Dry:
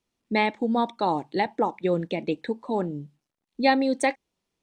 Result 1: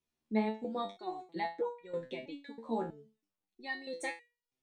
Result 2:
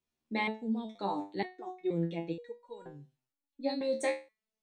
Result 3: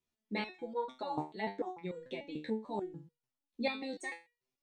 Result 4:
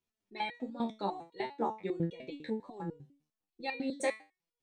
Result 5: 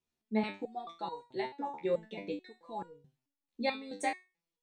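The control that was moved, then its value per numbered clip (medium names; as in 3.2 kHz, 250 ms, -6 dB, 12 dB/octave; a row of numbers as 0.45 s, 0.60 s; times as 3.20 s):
resonator arpeggio, rate: 3.1 Hz, 2.1 Hz, 6.8 Hz, 10 Hz, 4.6 Hz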